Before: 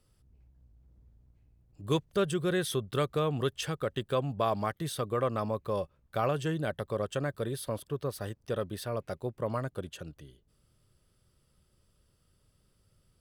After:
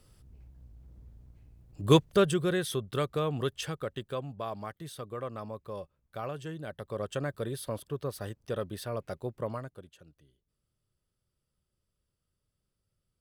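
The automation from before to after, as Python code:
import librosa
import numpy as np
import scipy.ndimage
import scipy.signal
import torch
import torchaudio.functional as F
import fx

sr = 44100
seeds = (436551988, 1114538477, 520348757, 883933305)

y = fx.gain(x, sr, db=fx.line((1.96, 8.0), (2.62, -1.0), (3.59, -1.0), (4.41, -8.0), (6.65, -8.0), (7.11, -1.0), (9.43, -1.0), (9.9, -13.5)))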